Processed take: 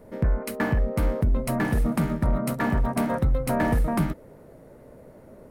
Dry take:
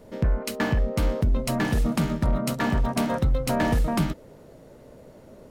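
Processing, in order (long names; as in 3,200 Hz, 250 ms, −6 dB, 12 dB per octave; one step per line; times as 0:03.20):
flat-topped bell 4,500 Hz −8.5 dB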